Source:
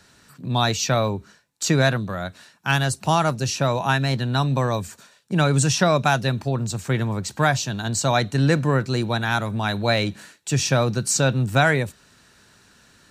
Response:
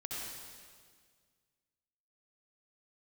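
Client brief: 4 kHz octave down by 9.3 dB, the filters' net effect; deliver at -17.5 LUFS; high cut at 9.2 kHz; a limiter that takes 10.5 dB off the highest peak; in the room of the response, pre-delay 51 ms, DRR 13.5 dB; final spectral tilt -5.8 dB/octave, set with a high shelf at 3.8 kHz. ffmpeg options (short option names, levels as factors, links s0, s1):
-filter_complex "[0:a]lowpass=9200,highshelf=f=3800:g=-5,equalizer=f=4000:t=o:g=-8,alimiter=limit=0.15:level=0:latency=1,asplit=2[s0][s1];[1:a]atrim=start_sample=2205,adelay=51[s2];[s1][s2]afir=irnorm=-1:irlink=0,volume=0.188[s3];[s0][s3]amix=inputs=2:normalize=0,volume=2.82"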